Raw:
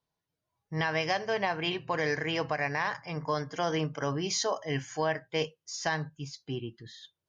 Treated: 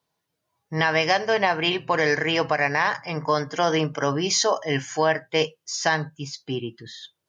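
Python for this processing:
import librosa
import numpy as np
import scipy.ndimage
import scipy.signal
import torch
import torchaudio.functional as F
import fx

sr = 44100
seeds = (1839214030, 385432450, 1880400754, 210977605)

y = fx.highpass(x, sr, hz=180.0, slope=6)
y = F.gain(torch.from_numpy(y), 9.0).numpy()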